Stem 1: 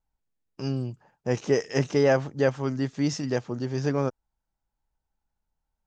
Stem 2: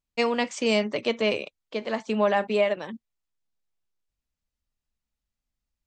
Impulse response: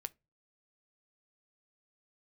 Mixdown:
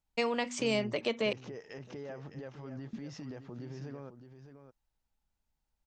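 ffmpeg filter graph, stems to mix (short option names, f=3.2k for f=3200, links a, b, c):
-filter_complex "[0:a]lowpass=3.9k,acompressor=threshold=-28dB:ratio=6,alimiter=level_in=7dB:limit=-24dB:level=0:latency=1:release=88,volume=-7dB,volume=-4.5dB,asplit=2[a][b];[b]volume=-10dB[c];[1:a]bandreject=f=122.4:t=h:w=4,bandreject=f=244.8:t=h:w=4,acompressor=threshold=-30dB:ratio=2,volume=-1.5dB,asplit=3[d][e][f];[d]atrim=end=1.33,asetpts=PTS-STARTPTS,afade=t=out:st=1.326:d=0.004:c=hsin[g];[e]atrim=start=1.33:end=2.93,asetpts=PTS-STARTPTS,volume=0[h];[f]atrim=start=2.93,asetpts=PTS-STARTPTS,afade=t=in:d=0.004:c=hsin[i];[g][h][i]concat=n=3:v=0:a=1[j];[c]aecho=0:1:611:1[k];[a][j][k]amix=inputs=3:normalize=0"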